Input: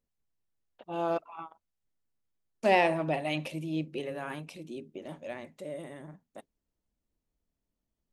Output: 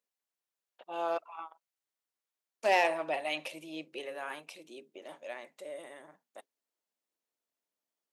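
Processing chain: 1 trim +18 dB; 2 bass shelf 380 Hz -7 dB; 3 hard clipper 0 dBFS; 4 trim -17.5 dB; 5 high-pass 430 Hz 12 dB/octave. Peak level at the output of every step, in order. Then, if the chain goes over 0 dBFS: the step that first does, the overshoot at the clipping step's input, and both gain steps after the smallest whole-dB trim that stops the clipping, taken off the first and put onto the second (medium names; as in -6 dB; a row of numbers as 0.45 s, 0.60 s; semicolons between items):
+7.5 dBFS, +6.0 dBFS, 0.0 dBFS, -17.5 dBFS, -13.5 dBFS; step 1, 6.0 dB; step 1 +12 dB, step 4 -11.5 dB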